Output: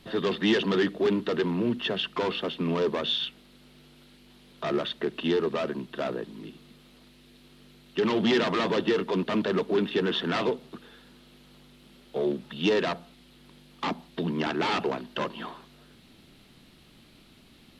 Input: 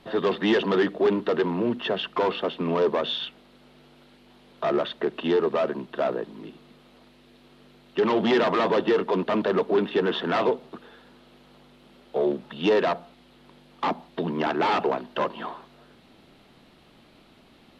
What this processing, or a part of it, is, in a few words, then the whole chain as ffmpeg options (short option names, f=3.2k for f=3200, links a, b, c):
smiley-face EQ: -af "lowshelf=f=190:g=3.5,equalizer=f=730:t=o:w=1.9:g=-7.5,highshelf=f=5k:g=7.5"